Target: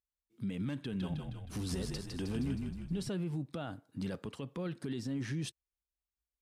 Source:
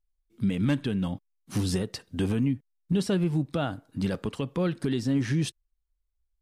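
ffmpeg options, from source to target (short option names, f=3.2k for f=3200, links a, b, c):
-filter_complex "[0:a]highpass=70,alimiter=limit=-21.5dB:level=0:latency=1:release=27,asettb=1/sr,asplit=3[a][b][c];[a]atrim=end=0.774[d];[b]atrim=start=0.77:end=3.09,asetpts=PTS-STARTPTS,afade=t=in:d=0.004:c=qsin,afade=t=out:st=2.316:d=0.004:c=qsin,asplit=9[e][f][g][h][i][j][k][l][m];[f]adelay=157,afreqshift=-34,volume=-4dB[n];[g]adelay=314,afreqshift=-68,volume=-8.7dB[o];[h]adelay=471,afreqshift=-102,volume=-13.5dB[p];[i]adelay=628,afreqshift=-136,volume=-18.2dB[q];[j]adelay=785,afreqshift=-170,volume=-22.9dB[r];[k]adelay=942,afreqshift=-204,volume=-27.7dB[s];[l]adelay=1099,afreqshift=-238,volume=-32.4dB[t];[m]adelay=1256,afreqshift=-272,volume=-37.1dB[u];[e][n][o][p][q][r][s][t][u]amix=inputs=9:normalize=0,atrim=end_sample=102312[v];[c]atrim=start=3.086[w];[d][v]acrossfade=d=0.004:c1=hsin:c2=qsin[x];[x][w]acrossfade=d=0.004:c1=qsin:c2=hsin,volume=-8dB"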